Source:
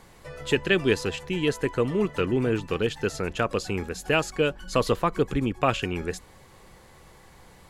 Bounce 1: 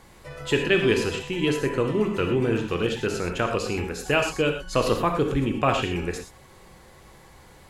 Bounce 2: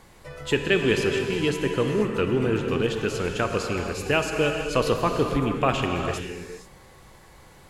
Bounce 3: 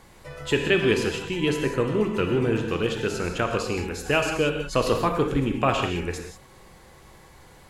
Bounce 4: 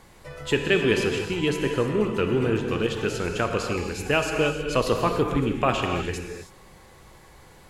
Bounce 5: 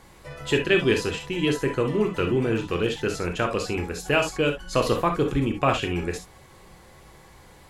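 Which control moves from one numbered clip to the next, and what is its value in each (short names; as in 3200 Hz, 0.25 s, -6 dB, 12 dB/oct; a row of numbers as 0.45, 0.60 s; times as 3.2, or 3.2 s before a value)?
non-linear reverb, gate: 140, 510, 210, 340, 90 ms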